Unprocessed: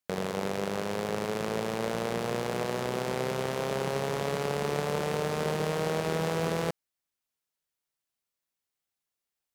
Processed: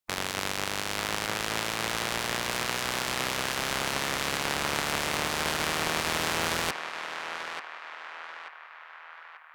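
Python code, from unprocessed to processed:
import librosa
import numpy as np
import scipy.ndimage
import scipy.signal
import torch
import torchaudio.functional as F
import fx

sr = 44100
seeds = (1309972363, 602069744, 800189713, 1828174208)

y = fx.spec_clip(x, sr, under_db=23)
y = fx.echo_banded(y, sr, ms=887, feedback_pct=60, hz=1400.0, wet_db=-5.0)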